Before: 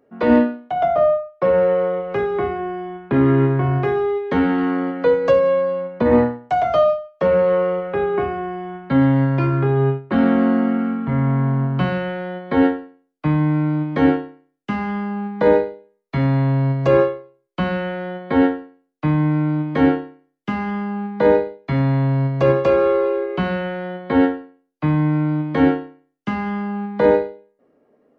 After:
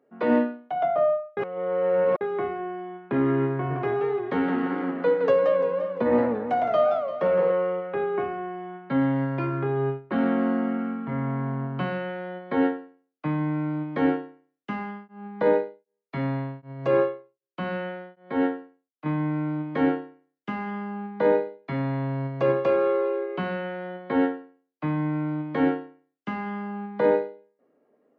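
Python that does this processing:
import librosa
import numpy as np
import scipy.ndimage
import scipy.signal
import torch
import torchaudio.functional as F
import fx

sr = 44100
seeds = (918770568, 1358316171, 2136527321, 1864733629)

y = fx.echo_warbled(x, sr, ms=172, feedback_pct=53, rate_hz=2.8, cents=197, wet_db=-8, at=(3.53, 7.52))
y = fx.tremolo_abs(y, sr, hz=1.3, at=(14.7, 19.06))
y = fx.edit(y, sr, fx.reverse_span(start_s=1.37, length_s=0.84), tone=tone)
y = scipy.signal.sosfilt(scipy.signal.butter(2, 130.0, 'highpass', fs=sr, output='sos'), y)
y = fx.bass_treble(y, sr, bass_db=-3, treble_db=-8)
y = y * 10.0 ** (-6.0 / 20.0)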